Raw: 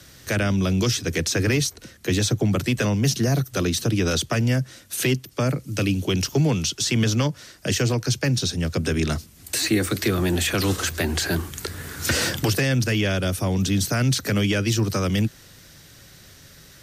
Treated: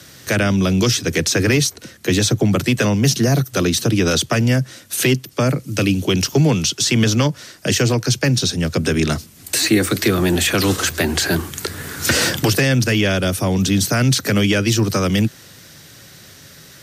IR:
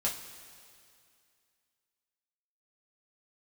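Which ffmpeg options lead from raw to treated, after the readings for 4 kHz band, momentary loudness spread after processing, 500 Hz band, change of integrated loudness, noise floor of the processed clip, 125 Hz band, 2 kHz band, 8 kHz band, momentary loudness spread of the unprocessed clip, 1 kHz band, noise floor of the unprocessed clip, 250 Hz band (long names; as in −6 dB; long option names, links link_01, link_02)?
+6.0 dB, 5 LU, +6.0 dB, +5.5 dB, −43 dBFS, +4.0 dB, +6.0 dB, +6.0 dB, 5 LU, +6.0 dB, −49 dBFS, +6.0 dB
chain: -af "highpass=100,volume=6dB"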